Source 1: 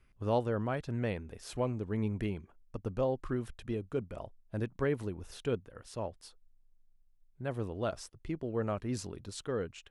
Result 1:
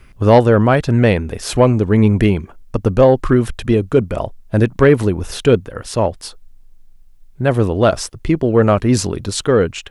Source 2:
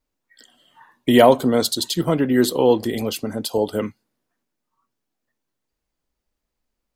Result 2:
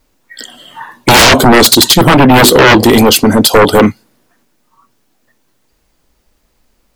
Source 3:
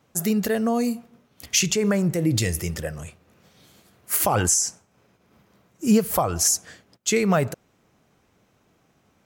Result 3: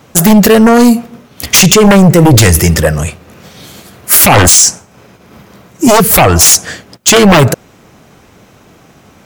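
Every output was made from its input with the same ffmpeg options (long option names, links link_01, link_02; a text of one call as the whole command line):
ffmpeg -i in.wav -af "aeval=exprs='0.891*sin(PI/2*7.94*val(0)/0.891)':channel_layout=same" out.wav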